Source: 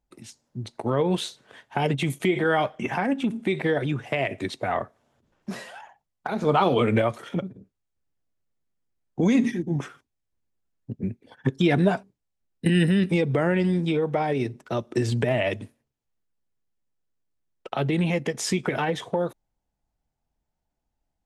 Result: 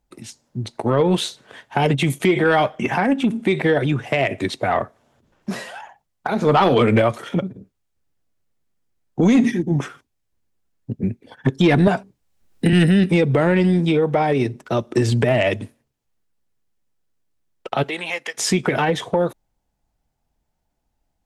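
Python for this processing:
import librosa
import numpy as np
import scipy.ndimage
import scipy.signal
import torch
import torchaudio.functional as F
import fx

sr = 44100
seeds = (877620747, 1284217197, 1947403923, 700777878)

y = fx.highpass(x, sr, hz=fx.line((17.82, 580.0), (18.37, 1300.0)), slope=12, at=(17.82, 18.37), fade=0.02)
y = fx.fold_sine(y, sr, drive_db=3, ceiling_db=-8.0)
y = fx.band_squash(y, sr, depth_pct=70, at=(11.87, 12.73))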